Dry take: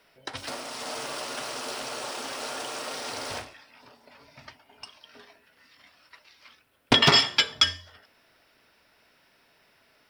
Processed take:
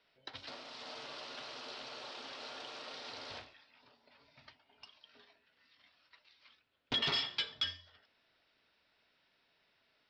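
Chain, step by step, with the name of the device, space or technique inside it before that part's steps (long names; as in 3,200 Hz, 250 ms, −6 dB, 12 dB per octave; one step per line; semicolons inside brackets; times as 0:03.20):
overdriven synthesiser ladder filter (soft clipping −18.5 dBFS, distortion −8 dB; transistor ladder low-pass 4,800 Hz, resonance 45%)
level −4.5 dB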